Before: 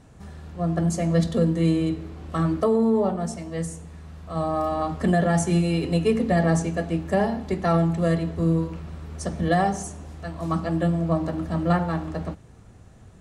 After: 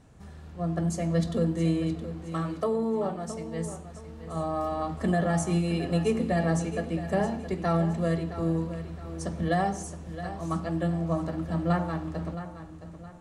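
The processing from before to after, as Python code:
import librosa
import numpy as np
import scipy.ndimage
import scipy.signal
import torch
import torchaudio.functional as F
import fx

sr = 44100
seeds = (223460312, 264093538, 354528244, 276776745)

p1 = fx.low_shelf(x, sr, hz=190.0, db=-9.5, at=(2.24, 3.28))
p2 = p1 + fx.echo_feedback(p1, sr, ms=668, feedback_pct=36, wet_db=-12.0, dry=0)
y = F.gain(torch.from_numpy(p2), -5.0).numpy()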